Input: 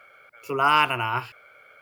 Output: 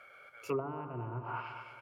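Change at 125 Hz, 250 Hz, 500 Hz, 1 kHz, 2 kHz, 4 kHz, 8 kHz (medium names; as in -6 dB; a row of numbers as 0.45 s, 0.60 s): -4.5 dB, -6.0 dB, -6.5 dB, -18.5 dB, -21.5 dB, -28.0 dB, no reading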